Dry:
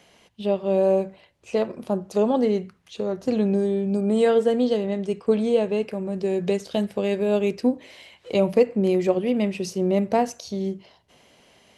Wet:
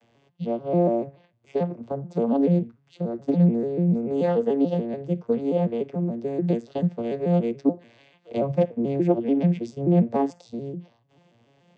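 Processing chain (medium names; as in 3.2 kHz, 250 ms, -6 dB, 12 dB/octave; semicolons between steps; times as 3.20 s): vocoder on a broken chord minor triad, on A#2, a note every 145 ms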